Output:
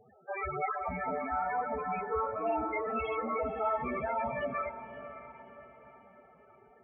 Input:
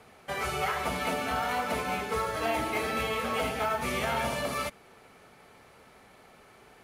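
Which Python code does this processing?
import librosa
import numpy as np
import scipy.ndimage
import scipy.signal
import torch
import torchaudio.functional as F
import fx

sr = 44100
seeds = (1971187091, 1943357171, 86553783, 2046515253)

y = fx.spec_topn(x, sr, count=8)
y = fx.echo_diffused(y, sr, ms=549, feedback_pct=45, wet_db=-12.0)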